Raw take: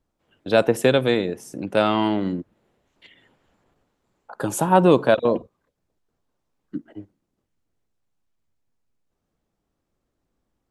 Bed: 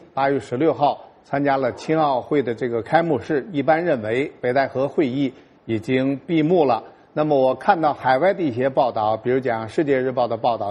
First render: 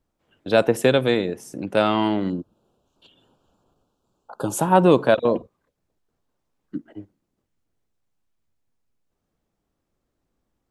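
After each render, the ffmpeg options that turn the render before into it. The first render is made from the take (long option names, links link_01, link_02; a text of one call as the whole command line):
ffmpeg -i in.wav -filter_complex "[0:a]asettb=1/sr,asplit=3[link_01][link_02][link_03];[link_01]atrim=end=2.304[link_04];[link_02]atrim=start=2.3:end=4.56,asetpts=PTS-STARTPTS,afade=type=in:duration=0.004:curve=qsin,afade=type=out:start_time=2.256:duration=0.004:curve=qsin,asuperstop=centerf=2000:order=4:qfactor=1.4[link_05];[link_03]atrim=start=4.556[link_06];[link_04][link_05]acrossfade=duration=0.004:curve1=hsin:curve2=qsin[link_07];[link_07][link_06]acrossfade=duration=0.004:curve1=qsin:curve2=hsin" out.wav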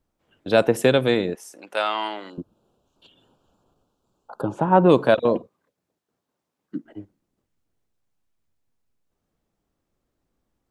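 ffmpeg -i in.wav -filter_complex "[0:a]asettb=1/sr,asplit=3[link_01][link_02][link_03];[link_01]atrim=end=1.354[link_04];[link_02]atrim=start=1.35:end=2.38,asetpts=PTS-STARTPTS,afade=type=in:duration=0.004:curve=qsin,afade=type=out:start_time=1.026:duration=0.004:curve=qsin,highpass=780[link_05];[link_03]atrim=start=2.376[link_06];[link_04][link_05]acrossfade=duration=0.004:curve1=hsin:curve2=qsin[link_07];[link_07][link_06]acrossfade=duration=0.004:curve1=qsin:curve2=hsin,asplit=3[link_08][link_09][link_10];[link_08]afade=type=out:start_time=4.4:duration=0.02[link_11];[link_09]lowpass=1800,afade=type=in:start_time=4.4:duration=0.02,afade=type=out:start_time=4.88:duration=0.02[link_12];[link_10]afade=type=in:start_time=4.88:duration=0.02[link_13];[link_11][link_12][link_13]amix=inputs=3:normalize=0,asettb=1/sr,asplit=3[link_14][link_15][link_16];[link_14]atrim=end=5.384[link_17];[link_15]atrim=start=5.38:end=6.85,asetpts=PTS-STARTPTS,afade=type=in:duration=0.004:curve=qsin,afade=type=out:start_time=1.466:duration=0.004:curve=qsin,highpass=140[link_18];[link_16]atrim=start=6.846[link_19];[link_17][link_18]acrossfade=duration=0.004:curve1=hsin:curve2=qsin[link_20];[link_20][link_19]acrossfade=duration=0.004:curve1=qsin:curve2=hsin" out.wav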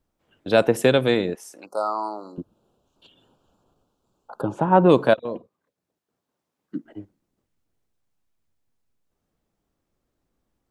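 ffmpeg -i in.wav -filter_complex "[0:a]asettb=1/sr,asplit=3[link_01][link_02][link_03];[link_01]atrim=end=1.664[link_04];[link_02]atrim=start=1.66:end=2.36,asetpts=PTS-STARTPTS,afade=type=in:duration=0.004:curve=qsin,afade=type=out:start_time=0.696:duration=0.004:curve=qsin,asuperstop=centerf=2400:order=20:qfactor=0.83[link_05];[link_03]atrim=start=2.356[link_06];[link_04][link_05]acrossfade=duration=0.004:curve1=hsin:curve2=qsin[link_07];[link_07][link_06]acrossfade=duration=0.004:curve1=qsin:curve2=hsin,asplit=2[link_08][link_09];[link_08]atrim=end=5.14,asetpts=PTS-STARTPTS,afade=type=out:start_time=5.136:duration=0.004:curve=hsin:silence=0.199526[link_10];[link_09]atrim=start=5.14,asetpts=PTS-STARTPTS,afade=type=in:duration=1.63:curve=qsin:silence=0.199526[link_11];[link_10][link_11]concat=n=2:v=0:a=1" out.wav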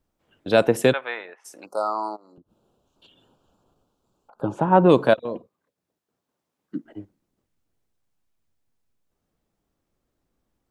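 ffmpeg -i in.wav -filter_complex "[0:a]asplit=3[link_01][link_02][link_03];[link_01]afade=type=out:start_time=0.92:duration=0.02[link_04];[link_02]asuperpass=centerf=1400:order=4:qfactor=0.92,afade=type=in:start_time=0.92:duration=0.02,afade=type=out:start_time=1.44:duration=0.02[link_05];[link_03]afade=type=in:start_time=1.44:duration=0.02[link_06];[link_04][link_05][link_06]amix=inputs=3:normalize=0,asplit=3[link_07][link_08][link_09];[link_07]afade=type=out:start_time=2.15:duration=0.02[link_10];[link_08]acompressor=threshold=-48dB:ratio=16:attack=3.2:release=140:knee=1:detection=peak,afade=type=in:start_time=2.15:duration=0.02,afade=type=out:start_time=4.41:duration=0.02[link_11];[link_09]afade=type=in:start_time=4.41:duration=0.02[link_12];[link_10][link_11][link_12]amix=inputs=3:normalize=0" out.wav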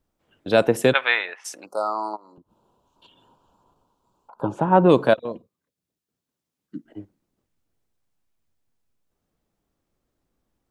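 ffmpeg -i in.wav -filter_complex "[0:a]asettb=1/sr,asplit=3[link_01][link_02][link_03];[link_01]atrim=end=0.954[link_04];[link_02]atrim=start=0.95:end=1.55,asetpts=PTS-STARTPTS,afade=type=in:duration=0.004:curve=qsin,afade=type=out:start_time=0.596:duration=0.004:curve=qsin,equalizer=frequency=3300:width=0.36:gain=14.5[link_05];[link_03]atrim=start=1.546[link_06];[link_04][link_05]acrossfade=duration=0.004:curve1=hsin:curve2=qsin[link_07];[link_07][link_06]acrossfade=duration=0.004:curve1=qsin:curve2=hsin,asettb=1/sr,asplit=3[link_08][link_09][link_10];[link_08]atrim=end=2.134[link_11];[link_09]atrim=start=2.13:end=4.47,asetpts=PTS-STARTPTS,afade=type=in:duration=0.004:curve=qsin,afade=type=out:start_time=2.336:duration=0.004:curve=qsin,equalizer=frequency=970:width=4.5:gain=14[link_12];[link_10]atrim=start=4.466[link_13];[link_11][link_12]acrossfade=duration=0.004:curve1=hsin:curve2=qsin[link_14];[link_14][link_13]acrossfade=duration=0.004:curve1=qsin:curve2=hsin,asettb=1/sr,asplit=3[link_15][link_16][link_17];[link_15]atrim=end=5.324[link_18];[link_16]atrim=start=5.32:end=6.92,asetpts=PTS-STARTPTS,afade=type=in:duration=0.004:curve=qsin,afade=type=out:start_time=1.596:duration=0.004:curve=qsin,equalizer=frequency=780:width=0.48:gain=-10.5[link_19];[link_17]atrim=start=6.916[link_20];[link_18][link_19]acrossfade=duration=0.004:curve1=hsin:curve2=qsin[link_21];[link_21][link_20]acrossfade=duration=0.004:curve1=qsin:curve2=hsin" out.wav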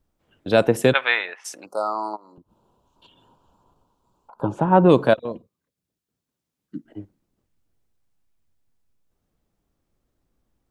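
ffmpeg -i in.wav -af "lowshelf=frequency=140:gain=6" out.wav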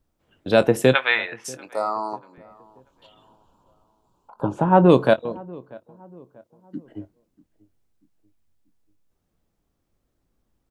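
ffmpeg -i in.wav -filter_complex "[0:a]asplit=2[link_01][link_02];[link_02]adelay=23,volume=-13dB[link_03];[link_01][link_03]amix=inputs=2:normalize=0,asplit=2[link_04][link_05];[link_05]adelay=638,lowpass=frequency=1300:poles=1,volume=-23dB,asplit=2[link_06][link_07];[link_07]adelay=638,lowpass=frequency=1300:poles=1,volume=0.45,asplit=2[link_08][link_09];[link_09]adelay=638,lowpass=frequency=1300:poles=1,volume=0.45[link_10];[link_04][link_06][link_08][link_10]amix=inputs=4:normalize=0" out.wav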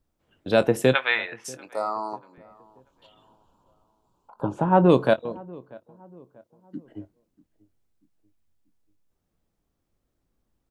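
ffmpeg -i in.wav -af "volume=-3dB" out.wav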